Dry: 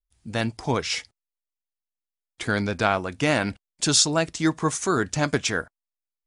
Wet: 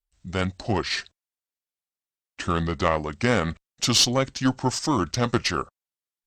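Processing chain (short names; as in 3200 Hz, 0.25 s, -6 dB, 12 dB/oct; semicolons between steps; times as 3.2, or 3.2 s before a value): pitch shift -3.5 st; added harmonics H 4 -22 dB, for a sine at -5.5 dBFS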